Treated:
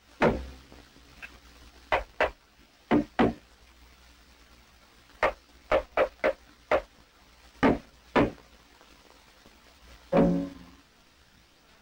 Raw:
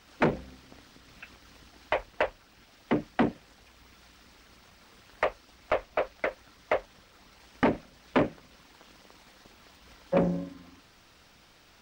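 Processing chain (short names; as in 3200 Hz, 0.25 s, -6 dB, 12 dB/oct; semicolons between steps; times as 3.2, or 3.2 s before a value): chorus voices 6, 0.69 Hz, delay 16 ms, depth 2.3 ms; sample leveller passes 1; gain +2.5 dB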